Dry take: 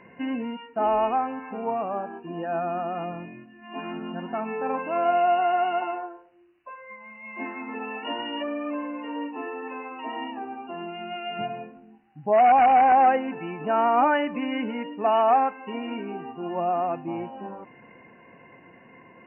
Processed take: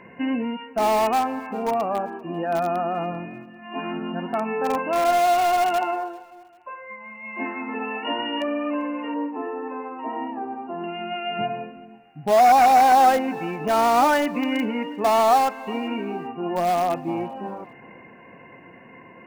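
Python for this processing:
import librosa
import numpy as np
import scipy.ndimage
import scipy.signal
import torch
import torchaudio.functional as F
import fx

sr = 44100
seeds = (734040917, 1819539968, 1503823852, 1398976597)

p1 = fx.lowpass(x, sr, hz=1300.0, slope=12, at=(9.14, 10.84))
p2 = (np.mod(10.0 ** (20.0 / 20.0) * p1 + 1.0, 2.0) - 1.0) / 10.0 ** (20.0 / 20.0)
p3 = p1 + F.gain(torch.from_numpy(p2), -11.5).numpy()
p4 = fx.echo_feedback(p3, sr, ms=394, feedback_pct=37, wet_db=-23)
y = F.gain(torch.from_numpy(p4), 2.5).numpy()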